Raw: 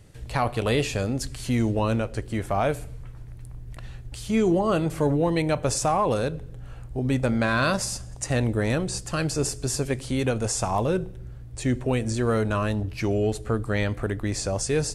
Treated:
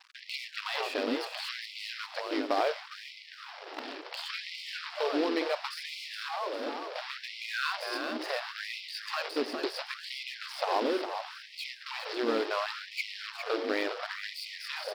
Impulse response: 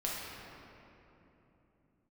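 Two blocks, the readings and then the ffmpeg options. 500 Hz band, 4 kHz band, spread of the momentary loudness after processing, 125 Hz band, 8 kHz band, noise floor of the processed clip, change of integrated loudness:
-8.0 dB, +0.5 dB, 10 LU, under -40 dB, -19.5 dB, -49 dBFS, -8.5 dB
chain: -filter_complex "[0:a]equalizer=f=170:w=1.2:g=8,acompressor=threshold=0.0316:ratio=4,aresample=11025,acrusher=bits=3:mode=log:mix=0:aa=0.000001,aresample=44100,aeval=exprs='sgn(val(0))*max(abs(val(0))-0.00473,0)':c=same,asplit=2[s0][s1];[s1]asplit=5[s2][s3][s4][s5][s6];[s2]adelay=408,afreqshift=42,volume=0.422[s7];[s3]adelay=816,afreqshift=84,volume=0.191[s8];[s4]adelay=1224,afreqshift=126,volume=0.0851[s9];[s5]adelay=1632,afreqshift=168,volume=0.0385[s10];[s6]adelay=2040,afreqshift=210,volume=0.0174[s11];[s7][s8][s9][s10][s11]amix=inputs=5:normalize=0[s12];[s0][s12]amix=inputs=2:normalize=0,afftfilt=real='re*gte(b*sr/1024,240*pow(2000/240,0.5+0.5*sin(2*PI*0.71*pts/sr)))':imag='im*gte(b*sr/1024,240*pow(2000/240,0.5+0.5*sin(2*PI*0.71*pts/sr)))':win_size=1024:overlap=0.75,volume=2"

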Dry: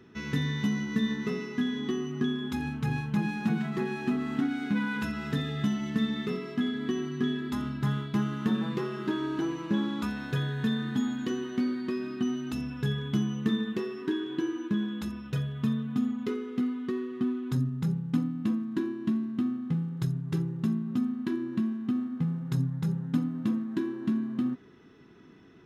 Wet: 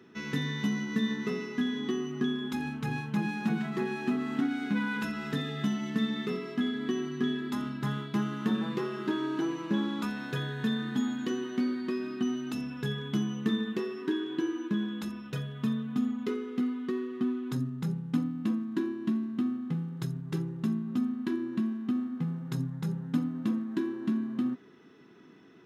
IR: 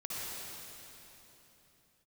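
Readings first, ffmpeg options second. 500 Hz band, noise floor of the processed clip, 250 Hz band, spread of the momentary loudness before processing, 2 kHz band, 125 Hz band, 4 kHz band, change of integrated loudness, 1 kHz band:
0.0 dB, -45 dBFS, -1.0 dB, 3 LU, 0.0 dB, -4.0 dB, 0.0 dB, -1.5 dB, 0.0 dB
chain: -af "highpass=170"

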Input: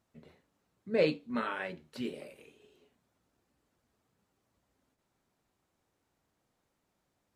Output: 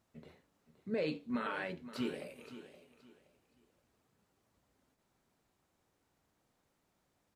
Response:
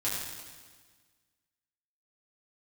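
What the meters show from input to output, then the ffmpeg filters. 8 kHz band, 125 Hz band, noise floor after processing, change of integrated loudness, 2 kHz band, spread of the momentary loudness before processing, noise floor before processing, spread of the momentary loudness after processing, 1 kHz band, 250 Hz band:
0.0 dB, -3.5 dB, -79 dBFS, -5.5 dB, -3.5 dB, 15 LU, -81 dBFS, 20 LU, -3.5 dB, -2.0 dB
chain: -filter_complex "[0:a]alimiter=level_in=1.5:limit=0.0631:level=0:latency=1:release=70,volume=0.668,asplit=2[s0][s1];[s1]aecho=0:1:521|1042|1563:0.2|0.0559|0.0156[s2];[s0][s2]amix=inputs=2:normalize=0,volume=1.12"

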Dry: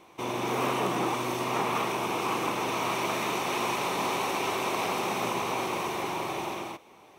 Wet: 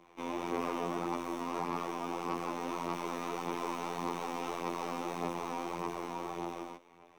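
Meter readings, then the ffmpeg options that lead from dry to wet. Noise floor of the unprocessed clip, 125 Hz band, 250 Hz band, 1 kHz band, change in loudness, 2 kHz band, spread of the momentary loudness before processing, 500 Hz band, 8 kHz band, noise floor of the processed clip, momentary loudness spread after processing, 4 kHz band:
-54 dBFS, -8.0 dB, -4.5 dB, -7.5 dB, -8.0 dB, -12.0 dB, 4 LU, -7.0 dB, -12.5 dB, -61 dBFS, 4 LU, -13.5 dB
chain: -filter_complex "[0:a]afftfilt=real='hypot(re,im)*cos(PI*b)':imag='0':win_size=2048:overlap=0.75,acrossover=split=120|600|2600[s0][s1][s2][s3];[s3]aeval=exprs='max(val(0),0)':c=same[s4];[s0][s1][s2][s4]amix=inputs=4:normalize=0,aphaser=in_gain=1:out_gain=1:delay=4.2:decay=0.34:speed=1.7:type=sinusoidal,asoftclip=type=tanh:threshold=0.112,adynamicequalizer=threshold=0.00355:dfrequency=2300:dqfactor=1.1:tfrequency=2300:tqfactor=1.1:attack=5:release=100:ratio=0.375:range=3:mode=cutabove:tftype=bell,volume=0.708"

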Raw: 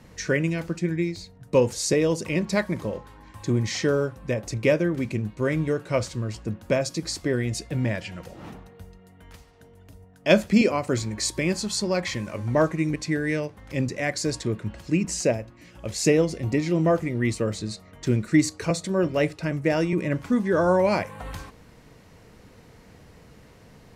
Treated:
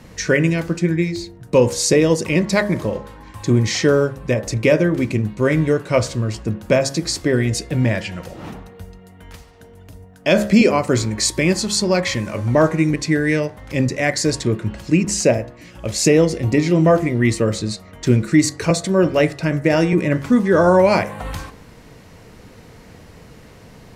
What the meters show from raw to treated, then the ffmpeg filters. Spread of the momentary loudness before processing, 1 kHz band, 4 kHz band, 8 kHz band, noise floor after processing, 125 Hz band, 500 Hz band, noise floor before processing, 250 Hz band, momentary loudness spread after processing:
12 LU, +7.5 dB, +7.5 dB, +8.0 dB, -44 dBFS, +7.5 dB, +7.0 dB, -52 dBFS, +7.0 dB, 10 LU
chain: -af "bandreject=f=68.49:t=h:w=4,bandreject=f=136.98:t=h:w=4,bandreject=f=205.47:t=h:w=4,bandreject=f=273.96:t=h:w=4,bandreject=f=342.45:t=h:w=4,bandreject=f=410.94:t=h:w=4,bandreject=f=479.43:t=h:w=4,bandreject=f=547.92:t=h:w=4,bandreject=f=616.41:t=h:w=4,bandreject=f=684.9:t=h:w=4,bandreject=f=753.39:t=h:w=4,bandreject=f=821.88:t=h:w=4,bandreject=f=890.37:t=h:w=4,bandreject=f=958.86:t=h:w=4,bandreject=f=1027.35:t=h:w=4,bandreject=f=1095.84:t=h:w=4,bandreject=f=1164.33:t=h:w=4,bandreject=f=1232.82:t=h:w=4,bandreject=f=1301.31:t=h:w=4,bandreject=f=1369.8:t=h:w=4,bandreject=f=1438.29:t=h:w=4,bandreject=f=1506.78:t=h:w=4,bandreject=f=1575.27:t=h:w=4,bandreject=f=1643.76:t=h:w=4,bandreject=f=1712.25:t=h:w=4,bandreject=f=1780.74:t=h:w=4,bandreject=f=1849.23:t=h:w=4,bandreject=f=1917.72:t=h:w=4,bandreject=f=1986.21:t=h:w=4,bandreject=f=2054.7:t=h:w=4,alimiter=level_in=3.35:limit=0.891:release=50:level=0:latency=1,volume=0.75"

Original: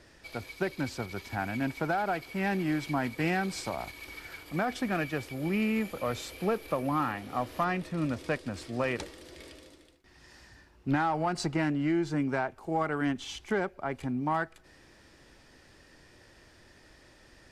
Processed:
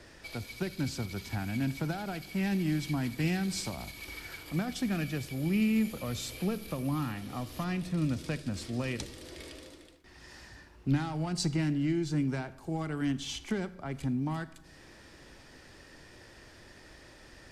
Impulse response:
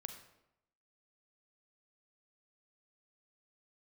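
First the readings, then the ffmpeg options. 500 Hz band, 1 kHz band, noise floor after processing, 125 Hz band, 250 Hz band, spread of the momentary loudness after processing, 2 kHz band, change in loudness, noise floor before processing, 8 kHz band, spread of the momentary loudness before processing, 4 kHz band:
-6.5 dB, -10.0 dB, -55 dBFS, +3.5 dB, +0.5 dB, 23 LU, -5.5 dB, -1.5 dB, -58 dBFS, +3.5 dB, 10 LU, +2.0 dB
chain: -filter_complex "[0:a]acrossover=split=270|3000[s0][s1][s2];[s1]acompressor=threshold=0.00282:ratio=2.5[s3];[s0][s3][s2]amix=inputs=3:normalize=0,asplit=2[s4][s5];[1:a]atrim=start_sample=2205[s6];[s5][s6]afir=irnorm=-1:irlink=0,volume=0.891[s7];[s4][s7]amix=inputs=2:normalize=0"

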